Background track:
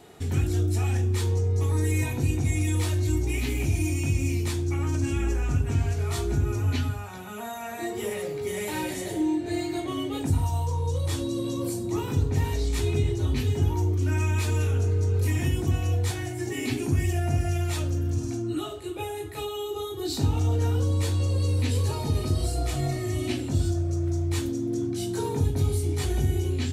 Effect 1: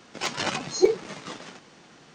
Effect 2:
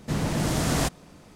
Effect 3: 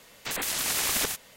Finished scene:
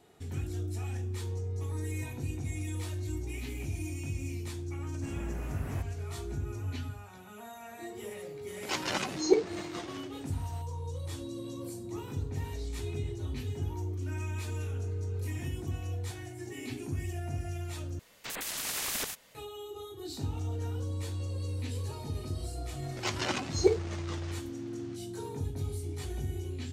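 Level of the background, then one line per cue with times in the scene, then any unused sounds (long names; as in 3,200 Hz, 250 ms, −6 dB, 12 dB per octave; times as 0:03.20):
background track −11 dB
0:04.94: mix in 2 −17.5 dB + flat-topped bell 5,300 Hz −15 dB
0:08.48: mix in 1 −4.5 dB
0:17.99: overwrite with 3 −7 dB
0:22.82: mix in 1 −5 dB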